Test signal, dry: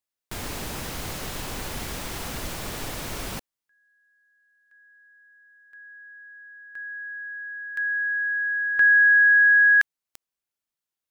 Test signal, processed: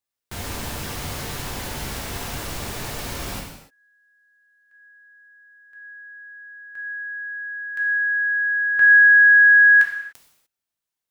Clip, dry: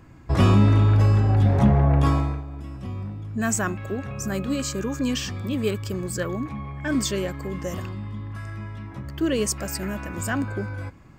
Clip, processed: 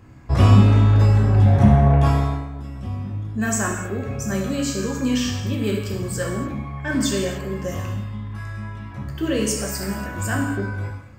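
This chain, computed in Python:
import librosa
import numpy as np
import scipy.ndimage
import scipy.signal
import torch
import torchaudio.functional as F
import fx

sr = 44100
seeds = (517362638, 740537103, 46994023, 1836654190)

y = fx.rev_gated(x, sr, seeds[0], gate_ms=320, shape='falling', drr_db=-1.0)
y = y * 10.0 ** (-1.0 / 20.0)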